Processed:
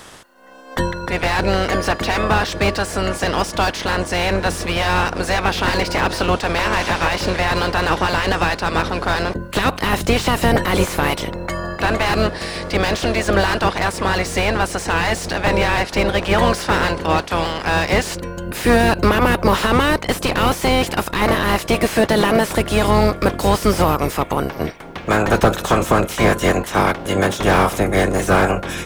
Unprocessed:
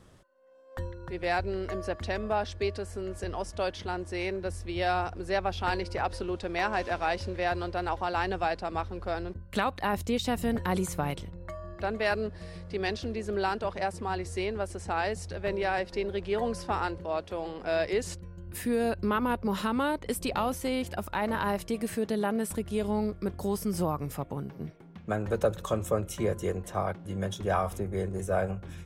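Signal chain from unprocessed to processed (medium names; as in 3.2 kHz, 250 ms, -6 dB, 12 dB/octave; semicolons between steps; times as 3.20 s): spectral peaks clipped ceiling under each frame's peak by 21 dB; loudness maximiser +16 dB; slew-rate limiter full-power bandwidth 280 Hz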